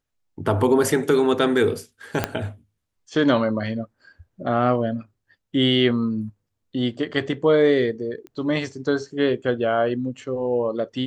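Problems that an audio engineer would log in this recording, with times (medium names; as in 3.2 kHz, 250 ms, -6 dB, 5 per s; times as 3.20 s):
2.24 s: pop -6 dBFS
8.27 s: pop -27 dBFS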